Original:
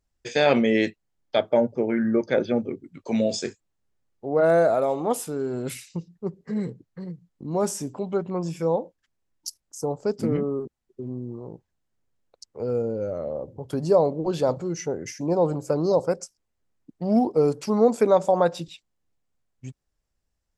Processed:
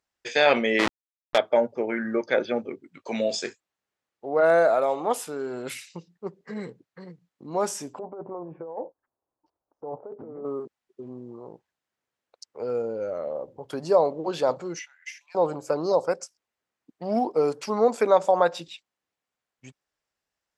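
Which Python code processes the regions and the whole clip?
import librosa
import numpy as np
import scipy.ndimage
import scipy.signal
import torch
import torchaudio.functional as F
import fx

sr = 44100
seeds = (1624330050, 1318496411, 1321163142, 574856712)

y = fx.chain(x, sr, fx.delta_hold(step_db=-20.5),
    fx.lowpass(hz=6800.0, slope=12),
    fx.env_flatten(amount_pct=100), at=(0.79, 1.38))
y = fx.chain(y, sr, fx.lowpass(hz=1000.0, slope=24),
    fx.over_compress(threshold_db=-31.0, ratio=-1.0),
    fx.peak_eq(hz=190.0, db=-11.0, octaves=0.42), at=(7.99, 10.45))
y = fx.chain(y, sr, fx.cheby2_highpass(hz=440.0, order=4, stop_db=70),
    fx.high_shelf_res(hz=3900.0, db=-6.5, q=1.5), at=(14.79, 15.35))
y = fx.highpass(y, sr, hz=1200.0, slope=6)
y = fx.high_shelf(y, sr, hz=4800.0, db=-12.0)
y = y * librosa.db_to_amplitude(7.0)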